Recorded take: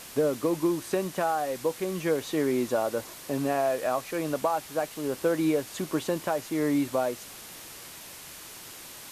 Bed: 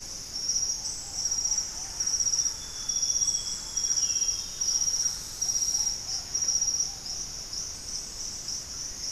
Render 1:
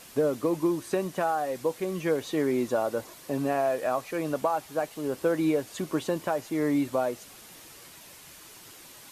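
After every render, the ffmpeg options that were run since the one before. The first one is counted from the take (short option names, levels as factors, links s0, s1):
-af "afftdn=nr=6:nf=-45"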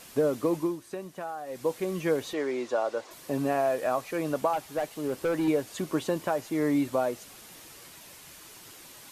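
-filter_complex "[0:a]asettb=1/sr,asplit=3[s0][s1][s2];[s0]atrim=end=2.334[s3];[s1]atrim=start=2.33:end=3.11,asetpts=PTS-STARTPTS,afade=t=in:d=0.004:c=qsin,afade=t=out:st=0.776:d=0.004:c=qsin,acrossover=split=340 7400:gain=0.141 1 0.0708[s4][s5][s6];[s4][s5][s6]amix=inputs=3:normalize=0[s7];[s2]atrim=start=3.106[s8];[s3][s7]acrossfade=d=0.004:c1=hsin:c2=qsin[s9];[s9][s8]acrossfade=d=0.004:c1=qsin:c2=hsin,asettb=1/sr,asplit=3[s10][s11][s12];[s10]atrim=end=4.534[s13];[s11]atrim=start=4.53:end=5.48,asetpts=PTS-STARTPTS,afade=t=in:d=0.004:c=qsin,afade=t=out:st=0.946:d=0.004:c=qsin,asoftclip=type=hard:threshold=0.0668[s14];[s12]atrim=start=5.476[s15];[s13][s14]acrossfade=d=0.004:c1=hsin:c2=qsin[s16];[s16][s15]acrossfade=d=0.004:c1=qsin:c2=hsin,asplit=3[s17][s18][s19];[s17]atrim=end=0.79,asetpts=PTS-STARTPTS,afade=t=out:st=0.55:d=0.24:silence=0.334965[s20];[s18]atrim=start=0.79:end=1.45,asetpts=PTS-STARTPTS,volume=0.335[s21];[s19]atrim=start=1.45,asetpts=PTS-STARTPTS,afade=t=in:d=0.24:silence=0.334965[s22];[s20][s21][s22]concat=n=3:v=0:a=1"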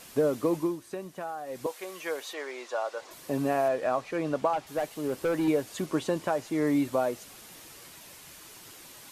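-filter_complex "[0:a]asettb=1/sr,asplit=3[s0][s1][s2];[s0]atrim=end=1.664[s3];[s1]atrim=start=1.66:end=3.02,asetpts=PTS-STARTPTS,afade=t=in:d=0.004:c=qsin,afade=t=out:st=1.356:d=0.004:c=qsin,highpass=670[s4];[s2]atrim=start=3.016[s5];[s3][s4]acrossfade=d=0.004:c1=hsin:c2=qsin[s6];[s6][s5]acrossfade=d=0.004:c1=qsin:c2=hsin,asettb=1/sr,asplit=3[s7][s8][s9];[s7]atrim=end=3.684[s10];[s8]atrim=start=3.68:end=4.67,asetpts=PTS-STARTPTS,afade=t=in:d=0.004:c=qsin,afade=t=out:st=0.986:d=0.004:c=qsin,adynamicsmooth=sensitivity=3.5:basefreq=6500[s11];[s9]atrim=start=4.666[s12];[s10][s11]acrossfade=d=0.004:c1=hsin:c2=qsin[s13];[s13][s12]acrossfade=d=0.004:c1=qsin:c2=hsin,asettb=1/sr,asplit=3[s14][s15][s16];[s14]atrim=end=5.864[s17];[s15]atrim=start=5.86:end=6.67,asetpts=PTS-STARTPTS,afade=t=in:d=0.004:c=qsin,afade=t=out:st=0.806:d=0.004:c=qsin,lowpass=11000[s18];[s16]atrim=start=6.666[s19];[s17][s18]acrossfade=d=0.004:c1=hsin:c2=qsin[s20];[s20][s19]acrossfade=d=0.004:c1=qsin:c2=hsin"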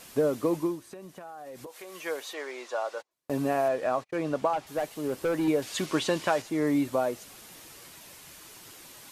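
-filter_complex "[0:a]asettb=1/sr,asplit=3[s0][s1][s2];[s0]atrim=end=0.844[s3];[s1]atrim=start=0.84:end=1.95,asetpts=PTS-STARTPTS,afade=t=in:d=0.004:c=qsin,afade=t=out:st=1.106:d=0.004:c=qsin,acompressor=threshold=0.0112:ratio=6:attack=3.2:release=140:knee=1:detection=peak[s4];[s2]atrim=start=1.946[s5];[s3][s4]acrossfade=d=0.004:c1=hsin:c2=qsin[s6];[s6][s5]acrossfade=d=0.004:c1=qsin:c2=hsin,asplit=3[s7][s8][s9];[s7]afade=t=out:st=3:d=0.02[s10];[s8]agate=range=0.0126:threshold=0.00891:ratio=16:release=100:detection=peak,afade=t=in:st=3:d=0.02,afade=t=out:st=4.3:d=0.02[s11];[s9]afade=t=in:st=4.3:d=0.02[s12];[s10][s11][s12]amix=inputs=3:normalize=0,asettb=1/sr,asplit=3[s13][s14][s15];[s13]atrim=end=5.624[s16];[s14]atrim=start=5.62:end=6.42,asetpts=PTS-STARTPTS,afade=t=in:d=0.004:c=qsin,afade=t=out:st=0.796:d=0.004:c=qsin,equalizer=f=3400:t=o:w=2.9:g=9.5[s17];[s15]atrim=start=6.416[s18];[s16][s17]acrossfade=d=0.004:c1=hsin:c2=qsin[s19];[s19][s18]acrossfade=d=0.004:c1=qsin:c2=hsin"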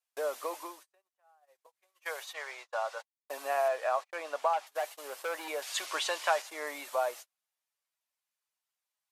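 -af "agate=range=0.00891:threshold=0.0112:ratio=16:detection=peak,highpass=f=640:w=0.5412,highpass=f=640:w=1.3066"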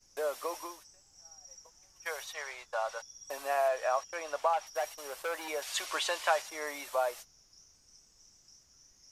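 -filter_complex "[1:a]volume=0.0531[s0];[0:a][s0]amix=inputs=2:normalize=0"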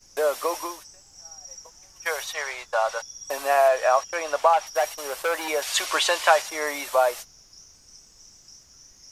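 -af "volume=3.35"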